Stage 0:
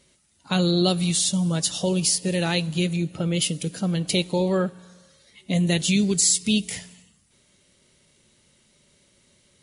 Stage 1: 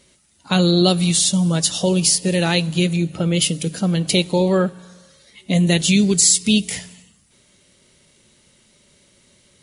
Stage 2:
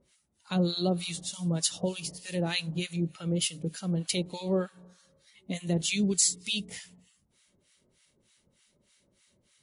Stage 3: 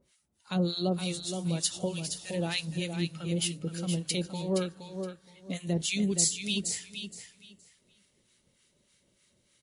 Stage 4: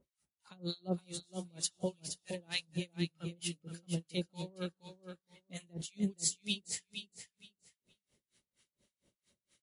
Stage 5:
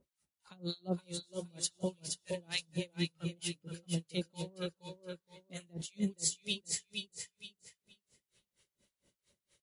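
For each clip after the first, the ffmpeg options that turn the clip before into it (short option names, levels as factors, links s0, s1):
-af "bandreject=f=50:t=h:w=6,bandreject=f=100:t=h:w=6,bandreject=f=150:t=h:w=6,volume=1.88"
-filter_complex "[0:a]acrossover=split=980[s0][s1];[s0]aeval=exprs='val(0)*(1-1/2+1/2*cos(2*PI*3.3*n/s))':c=same[s2];[s1]aeval=exprs='val(0)*(1-1/2-1/2*cos(2*PI*3.3*n/s))':c=same[s3];[s2][s3]amix=inputs=2:normalize=0,volume=0.376"
-af "aecho=1:1:469|938|1407:0.422|0.0843|0.0169,volume=0.841"
-af "aeval=exprs='val(0)*pow(10,-32*(0.5-0.5*cos(2*PI*4.3*n/s))/20)':c=same,volume=0.75"
-af "aecho=1:1:471:0.473"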